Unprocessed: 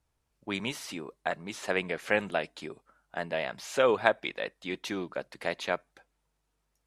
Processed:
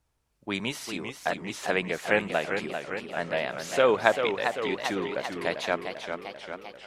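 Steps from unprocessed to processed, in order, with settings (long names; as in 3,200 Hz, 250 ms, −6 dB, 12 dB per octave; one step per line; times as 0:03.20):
feedback echo with a swinging delay time 398 ms, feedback 64%, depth 157 cents, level −7 dB
level +2.5 dB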